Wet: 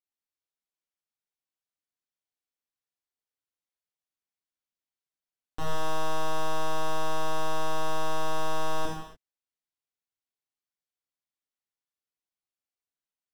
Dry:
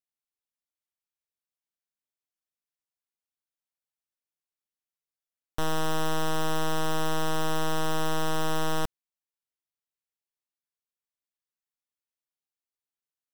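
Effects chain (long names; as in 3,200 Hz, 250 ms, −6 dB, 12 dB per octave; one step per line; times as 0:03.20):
high-shelf EQ 9,600 Hz −10 dB
reverb whose tail is shaped and stops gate 320 ms falling, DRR −4.5 dB
level −7.5 dB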